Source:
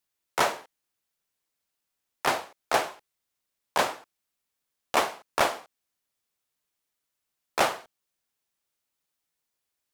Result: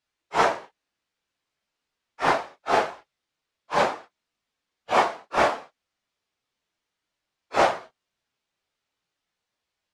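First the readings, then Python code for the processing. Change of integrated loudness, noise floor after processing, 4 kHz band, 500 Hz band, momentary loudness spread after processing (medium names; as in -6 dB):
+4.0 dB, -84 dBFS, -1.0 dB, +5.0 dB, 11 LU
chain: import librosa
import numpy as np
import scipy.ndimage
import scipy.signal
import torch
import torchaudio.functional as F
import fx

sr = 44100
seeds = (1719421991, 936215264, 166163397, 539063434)

y = fx.phase_scramble(x, sr, seeds[0], window_ms=100)
y = scipy.signal.sosfilt(scipy.signal.butter(2, 4600.0, 'lowpass', fs=sr, output='sos'), y)
y = fx.dynamic_eq(y, sr, hz=3300.0, q=0.83, threshold_db=-43.0, ratio=4.0, max_db=-6)
y = y * librosa.db_to_amplitude(5.5)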